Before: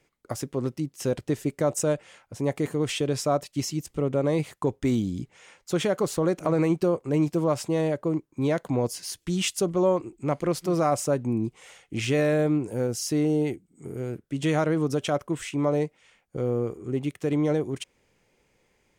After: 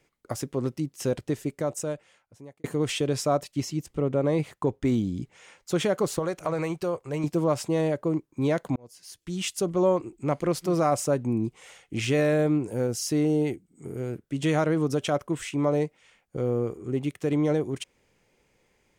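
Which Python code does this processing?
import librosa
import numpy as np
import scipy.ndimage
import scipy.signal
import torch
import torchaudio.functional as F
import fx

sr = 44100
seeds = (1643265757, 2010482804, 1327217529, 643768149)

y = fx.high_shelf(x, sr, hz=3900.0, db=-6.5, at=(3.54, 5.22))
y = fx.peak_eq(y, sr, hz=250.0, db=-11.5, octaves=1.4, at=(6.19, 7.24))
y = fx.edit(y, sr, fx.fade_out_span(start_s=1.03, length_s=1.61),
    fx.fade_in_span(start_s=8.76, length_s=1.07), tone=tone)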